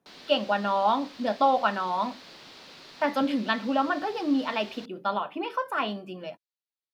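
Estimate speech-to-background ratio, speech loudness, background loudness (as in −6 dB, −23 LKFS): 19.0 dB, −27.5 LKFS, −46.5 LKFS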